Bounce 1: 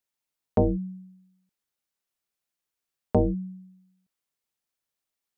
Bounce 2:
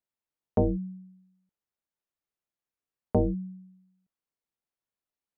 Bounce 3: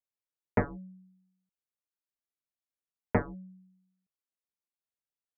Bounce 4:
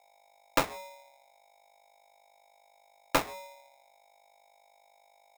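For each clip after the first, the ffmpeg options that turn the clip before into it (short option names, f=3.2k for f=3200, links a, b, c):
-af "highshelf=f=2.1k:g=-11.5,volume=-2dB"
-af "aeval=exprs='0.168*(cos(1*acos(clip(val(0)/0.168,-1,1)))-cos(1*PI/2))+0.075*(cos(3*acos(clip(val(0)/0.168,-1,1)))-cos(3*PI/2))':c=same"
-af "aeval=exprs='val(0)+0.000794*(sin(2*PI*50*n/s)+sin(2*PI*2*50*n/s)/2+sin(2*PI*3*50*n/s)/3+sin(2*PI*4*50*n/s)/4+sin(2*PI*5*50*n/s)/5)':c=same,aeval=exprs='val(0)*sgn(sin(2*PI*750*n/s))':c=same"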